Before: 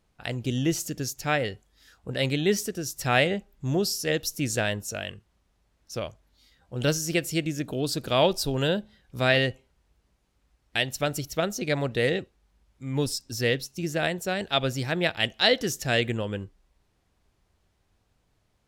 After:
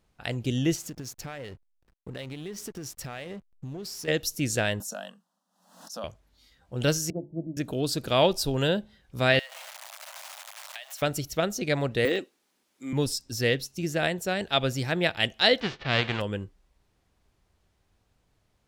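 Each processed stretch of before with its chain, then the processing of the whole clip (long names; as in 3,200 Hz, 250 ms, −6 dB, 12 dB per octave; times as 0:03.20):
0:00.75–0:04.08: downward compressor 10 to 1, threshold −33 dBFS + slack as between gear wheels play −42 dBFS
0:04.80–0:06.04: Chebyshev high-pass filter 180 Hz, order 6 + phaser with its sweep stopped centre 930 Hz, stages 4 + background raised ahead of every attack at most 86 dB per second
0:07.10–0:07.57: Chebyshev low-pass with heavy ripple 900 Hz, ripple 9 dB + mains-hum notches 50/100/150/200/250/300/350/400/450 Hz + multiband upward and downward expander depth 70%
0:09.39–0:11.02: converter with a step at zero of −31 dBFS + Butterworth high-pass 590 Hz 72 dB per octave + downward compressor 8 to 1, threshold −37 dBFS
0:12.05–0:12.93: de-essing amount 100% + high-pass with resonance 270 Hz, resonance Q 2.4 + spectral tilt +2.5 dB per octave
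0:15.59–0:16.20: spectral envelope flattened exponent 0.3 + low-pass filter 3,800 Hz 24 dB per octave + low-pass that shuts in the quiet parts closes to 1,800 Hz, open at −21 dBFS
whole clip: no processing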